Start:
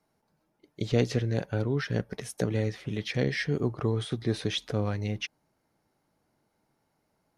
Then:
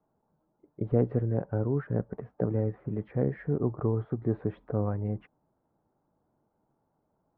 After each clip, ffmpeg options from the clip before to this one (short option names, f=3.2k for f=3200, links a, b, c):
-af "lowpass=f=1.2k:w=0.5412,lowpass=f=1.2k:w=1.3066"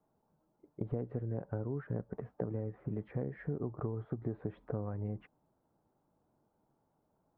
-af "acompressor=threshold=-31dB:ratio=10,volume=-1.5dB"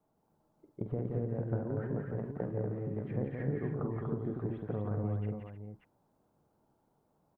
-af "aecho=1:1:48|173|240|310|584:0.355|0.596|0.668|0.282|0.398"